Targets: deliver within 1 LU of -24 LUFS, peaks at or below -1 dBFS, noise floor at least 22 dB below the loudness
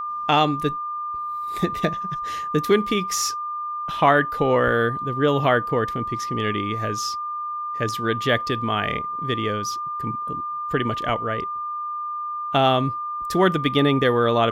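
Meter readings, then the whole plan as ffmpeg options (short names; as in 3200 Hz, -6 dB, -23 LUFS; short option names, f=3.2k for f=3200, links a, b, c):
steady tone 1200 Hz; tone level -26 dBFS; loudness -23.0 LUFS; peak -4.0 dBFS; loudness target -24.0 LUFS
-> -af "bandreject=f=1.2k:w=30"
-af "volume=-1dB"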